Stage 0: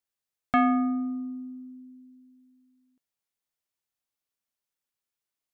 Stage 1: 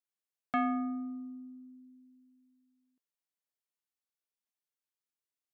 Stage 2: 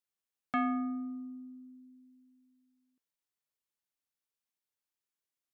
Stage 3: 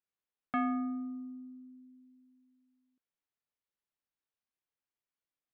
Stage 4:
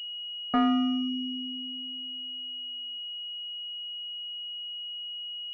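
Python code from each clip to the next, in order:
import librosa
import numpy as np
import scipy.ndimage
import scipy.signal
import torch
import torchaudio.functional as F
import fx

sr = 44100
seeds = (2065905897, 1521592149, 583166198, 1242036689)

y1 = scipy.signal.sosfilt(scipy.signal.butter(2, 160.0, 'highpass', fs=sr, output='sos'), x)
y1 = F.gain(torch.from_numpy(y1), -8.0).numpy()
y2 = fx.notch(y1, sr, hz=690.0, q=12.0)
y3 = fx.air_absorb(y2, sr, metres=240.0)
y4 = fx.spec_gate(y3, sr, threshold_db=-25, keep='strong')
y4 = fx.pwm(y4, sr, carrier_hz=2900.0)
y4 = F.gain(torch.from_numpy(y4), 8.5).numpy()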